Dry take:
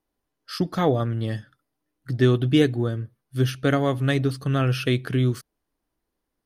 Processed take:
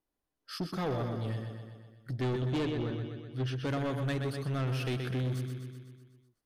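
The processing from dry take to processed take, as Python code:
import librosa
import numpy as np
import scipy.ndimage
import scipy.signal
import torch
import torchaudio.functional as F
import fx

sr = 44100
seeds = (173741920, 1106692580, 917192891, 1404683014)

y = fx.savgol(x, sr, points=15, at=(2.39, 3.56))
y = fx.echo_feedback(y, sr, ms=125, feedback_pct=60, wet_db=-8.0)
y = 10.0 ** (-20.5 / 20.0) * np.tanh(y / 10.0 ** (-20.5 / 20.0))
y = y * 10.0 ** (-7.5 / 20.0)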